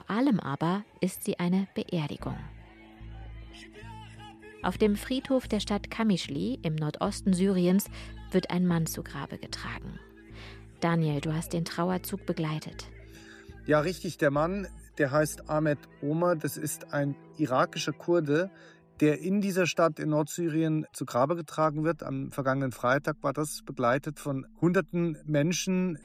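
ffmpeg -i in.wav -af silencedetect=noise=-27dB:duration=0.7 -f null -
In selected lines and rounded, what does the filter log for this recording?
silence_start: 2.32
silence_end: 4.64 | silence_duration: 2.32
silence_start: 9.77
silence_end: 10.82 | silence_duration: 1.06
silence_start: 12.80
silence_end: 13.69 | silence_duration: 0.89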